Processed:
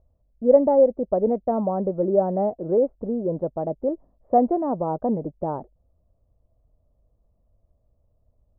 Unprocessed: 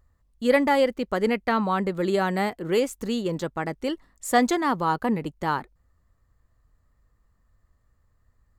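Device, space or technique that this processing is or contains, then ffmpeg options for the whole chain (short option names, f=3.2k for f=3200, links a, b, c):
under water: -af "lowpass=f=740:w=0.5412,lowpass=f=740:w=1.3066,equalizer=f=620:t=o:w=0.51:g=10.5"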